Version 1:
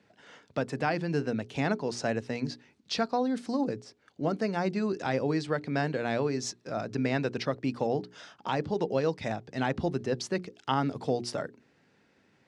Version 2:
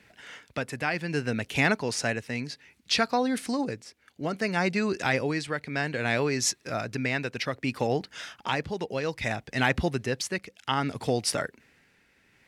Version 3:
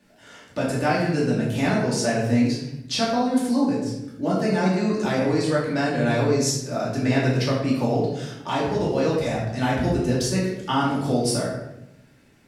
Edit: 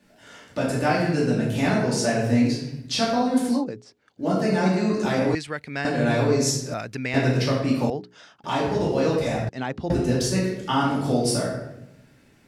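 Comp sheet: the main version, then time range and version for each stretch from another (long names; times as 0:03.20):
3
0:03.60–0:04.22: punch in from 1, crossfade 0.10 s
0:05.35–0:05.85: punch in from 2
0:06.74–0:07.14: punch in from 2
0:07.90–0:08.44: punch in from 1
0:09.49–0:09.90: punch in from 1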